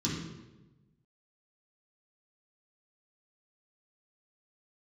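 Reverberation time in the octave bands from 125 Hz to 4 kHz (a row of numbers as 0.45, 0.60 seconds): 1.5, 1.3, 1.2, 0.95, 0.85, 0.80 seconds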